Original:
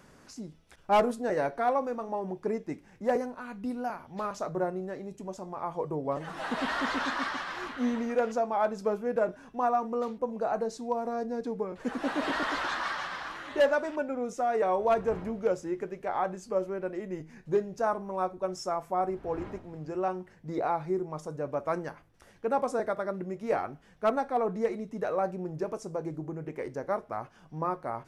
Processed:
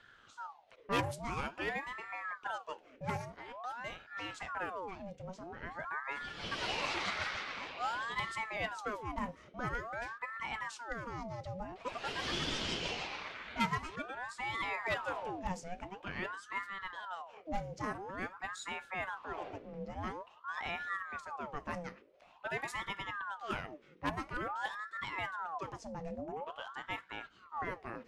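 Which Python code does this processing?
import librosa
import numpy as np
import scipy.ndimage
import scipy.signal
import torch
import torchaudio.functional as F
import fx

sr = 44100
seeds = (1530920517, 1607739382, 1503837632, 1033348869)

y = fx.env_lowpass(x, sr, base_hz=2500.0, full_db=-23.0)
y = fx.band_shelf(y, sr, hz=570.0, db=-11.0, octaves=2.7)
y = fx.ring_lfo(y, sr, carrier_hz=960.0, swing_pct=65, hz=0.48)
y = y * librosa.db_to_amplitude(2.5)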